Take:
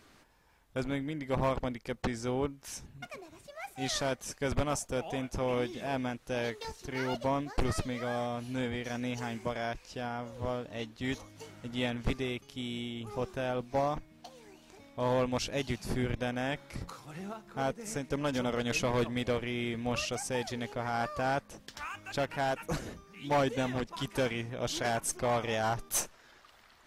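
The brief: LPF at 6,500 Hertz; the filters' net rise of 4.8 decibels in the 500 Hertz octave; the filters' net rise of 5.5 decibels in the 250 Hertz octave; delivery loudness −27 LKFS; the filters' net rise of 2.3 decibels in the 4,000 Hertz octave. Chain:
low-pass filter 6,500 Hz
parametric band 250 Hz +5 dB
parametric band 500 Hz +4.5 dB
parametric band 4,000 Hz +3.5 dB
level +3.5 dB

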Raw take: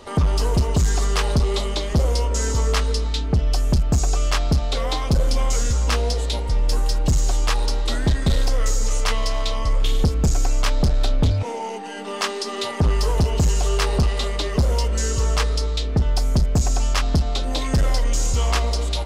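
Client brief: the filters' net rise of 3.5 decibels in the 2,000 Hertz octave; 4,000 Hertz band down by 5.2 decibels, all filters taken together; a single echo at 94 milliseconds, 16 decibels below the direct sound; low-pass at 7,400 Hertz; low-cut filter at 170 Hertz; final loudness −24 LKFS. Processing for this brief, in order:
high-pass filter 170 Hz
low-pass filter 7,400 Hz
parametric band 2,000 Hz +6.5 dB
parametric band 4,000 Hz −8.5 dB
single-tap delay 94 ms −16 dB
level +3.5 dB

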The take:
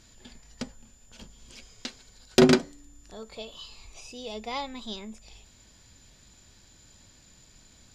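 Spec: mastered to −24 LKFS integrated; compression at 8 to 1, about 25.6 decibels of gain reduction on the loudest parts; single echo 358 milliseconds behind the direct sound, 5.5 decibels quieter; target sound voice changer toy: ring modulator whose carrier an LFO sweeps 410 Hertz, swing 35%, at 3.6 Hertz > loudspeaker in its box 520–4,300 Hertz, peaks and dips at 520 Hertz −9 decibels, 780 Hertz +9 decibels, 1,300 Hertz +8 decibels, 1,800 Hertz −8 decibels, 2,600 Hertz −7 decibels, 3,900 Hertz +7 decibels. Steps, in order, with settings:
downward compressor 8 to 1, threshold −41 dBFS
single-tap delay 358 ms −5.5 dB
ring modulator whose carrier an LFO sweeps 410 Hz, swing 35%, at 3.6 Hz
loudspeaker in its box 520–4,300 Hz, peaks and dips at 520 Hz −9 dB, 780 Hz +9 dB, 1,300 Hz +8 dB, 1,800 Hz −8 dB, 2,600 Hz −7 dB, 3,900 Hz +7 dB
level +26 dB

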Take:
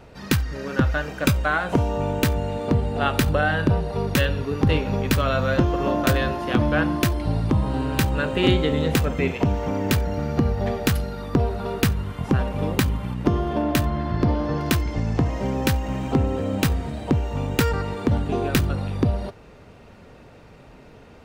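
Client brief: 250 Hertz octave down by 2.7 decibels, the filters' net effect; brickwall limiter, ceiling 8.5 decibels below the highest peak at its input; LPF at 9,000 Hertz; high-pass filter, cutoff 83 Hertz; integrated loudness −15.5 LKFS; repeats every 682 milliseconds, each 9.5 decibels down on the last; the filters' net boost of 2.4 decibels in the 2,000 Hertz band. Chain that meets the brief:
high-pass filter 83 Hz
low-pass filter 9,000 Hz
parametric band 250 Hz −3.5 dB
parametric band 2,000 Hz +3.5 dB
brickwall limiter −13.5 dBFS
repeating echo 682 ms, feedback 33%, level −9.5 dB
level +10 dB

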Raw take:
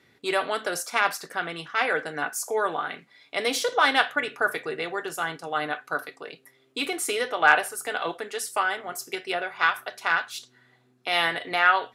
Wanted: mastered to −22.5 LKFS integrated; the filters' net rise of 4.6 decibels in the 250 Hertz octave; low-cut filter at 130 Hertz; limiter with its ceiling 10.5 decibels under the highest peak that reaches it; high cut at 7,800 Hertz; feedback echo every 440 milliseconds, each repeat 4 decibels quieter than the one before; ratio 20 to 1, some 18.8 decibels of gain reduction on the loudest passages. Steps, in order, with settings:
high-pass filter 130 Hz
low-pass filter 7,800 Hz
parametric band 250 Hz +6.5 dB
downward compressor 20 to 1, threshold −31 dBFS
brickwall limiter −26.5 dBFS
repeating echo 440 ms, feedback 63%, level −4 dB
level +14.5 dB

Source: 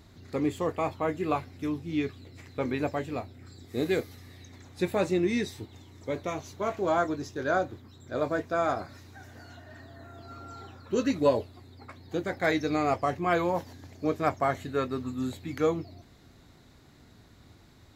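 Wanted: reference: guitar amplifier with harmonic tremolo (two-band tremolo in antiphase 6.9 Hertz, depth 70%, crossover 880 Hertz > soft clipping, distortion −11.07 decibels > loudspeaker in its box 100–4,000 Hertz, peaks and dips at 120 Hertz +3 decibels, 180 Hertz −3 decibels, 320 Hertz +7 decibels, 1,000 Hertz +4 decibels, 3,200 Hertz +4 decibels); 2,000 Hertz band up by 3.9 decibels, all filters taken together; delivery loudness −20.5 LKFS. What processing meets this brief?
parametric band 2,000 Hz +4.5 dB
two-band tremolo in antiphase 6.9 Hz, depth 70%, crossover 880 Hz
soft clipping −26.5 dBFS
loudspeaker in its box 100–4,000 Hz, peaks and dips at 120 Hz +3 dB, 180 Hz −3 dB, 320 Hz +7 dB, 1,000 Hz +4 dB, 3,200 Hz +4 dB
level +13 dB

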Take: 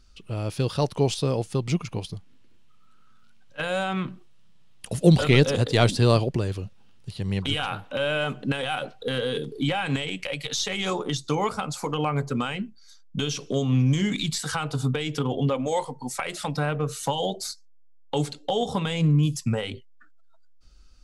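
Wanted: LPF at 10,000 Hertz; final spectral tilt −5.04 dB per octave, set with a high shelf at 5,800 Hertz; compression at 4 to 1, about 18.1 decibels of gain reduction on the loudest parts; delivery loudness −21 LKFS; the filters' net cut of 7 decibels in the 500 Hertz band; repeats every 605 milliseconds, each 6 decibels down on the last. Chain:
low-pass filter 10,000 Hz
parametric band 500 Hz −8.5 dB
high-shelf EQ 5,800 Hz −8 dB
downward compressor 4 to 1, threshold −36 dBFS
repeating echo 605 ms, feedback 50%, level −6 dB
level +17.5 dB

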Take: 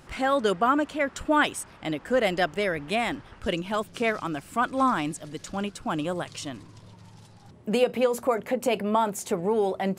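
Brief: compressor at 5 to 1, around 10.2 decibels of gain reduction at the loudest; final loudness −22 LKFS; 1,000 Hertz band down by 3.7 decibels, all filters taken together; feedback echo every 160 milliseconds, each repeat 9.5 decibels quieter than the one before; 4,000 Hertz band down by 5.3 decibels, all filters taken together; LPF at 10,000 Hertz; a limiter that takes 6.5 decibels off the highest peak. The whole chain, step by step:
low-pass filter 10,000 Hz
parametric band 1,000 Hz −4.5 dB
parametric band 4,000 Hz −7.5 dB
downward compressor 5 to 1, threshold −30 dBFS
brickwall limiter −27 dBFS
repeating echo 160 ms, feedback 33%, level −9.5 dB
level +14.5 dB

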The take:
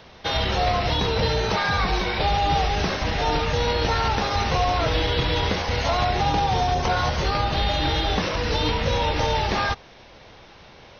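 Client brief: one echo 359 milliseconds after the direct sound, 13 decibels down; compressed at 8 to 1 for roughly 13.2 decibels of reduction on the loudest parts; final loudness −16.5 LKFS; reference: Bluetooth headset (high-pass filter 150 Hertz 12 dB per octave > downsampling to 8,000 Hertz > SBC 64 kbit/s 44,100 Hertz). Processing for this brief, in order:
downward compressor 8 to 1, threshold −32 dBFS
high-pass filter 150 Hz 12 dB per octave
single-tap delay 359 ms −13 dB
downsampling to 8,000 Hz
level +19.5 dB
SBC 64 kbit/s 44,100 Hz

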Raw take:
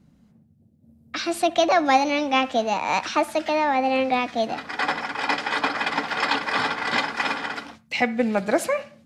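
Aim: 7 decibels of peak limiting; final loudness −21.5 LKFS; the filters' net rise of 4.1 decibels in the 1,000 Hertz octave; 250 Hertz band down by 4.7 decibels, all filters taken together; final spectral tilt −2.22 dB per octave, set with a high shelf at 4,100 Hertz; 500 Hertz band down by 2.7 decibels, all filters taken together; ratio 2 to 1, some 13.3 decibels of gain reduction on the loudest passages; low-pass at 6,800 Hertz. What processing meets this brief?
low-pass filter 6,800 Hz
parametric band 250 Hz −4 dB
parametric band 500 Hz −7 dB
parametric band 1,000 Hz +8 dB
high-shelf EQ 4,100 Hz +6 dB
downward compressor 2 to 1, threshold −37 dBFS
level +12 dB
brickwall limiter −10.5 dBFS

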